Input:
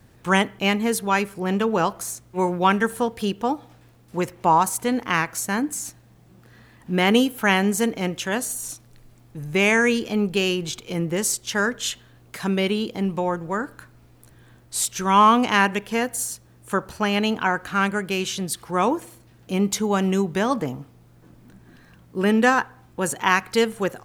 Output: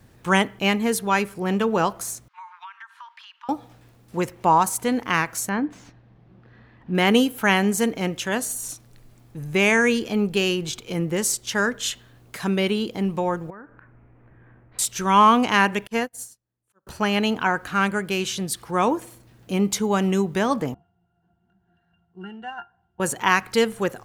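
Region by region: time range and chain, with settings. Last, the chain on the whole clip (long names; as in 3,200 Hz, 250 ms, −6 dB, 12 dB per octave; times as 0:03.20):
0:02.28–0:03.49: Butterworth high-pass 930 Hz 72 dB per octave + downward compressor 8 to 1, threshold −36 dBFS + high-frequency loss of the air 240 metres
0:05.49–0:06.95: running median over 3 samples + high-frequency loss of the air 270 metres
0:13.50–0:14.79: Butterworth low-pass 2,300 Hz + downward compressor 2.5 to 1, threshold −47 dBFS
0:15.87–0:16.87: volume swells 306 ms + expander for the loud parts 2.5 to 1, over −42 dBFS
0:20.74–0:23.00: low shelf with overshoot 610 Hz −9 dB, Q 1.5 + resonances in every octave F, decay 0.11 s
whole clip: no processing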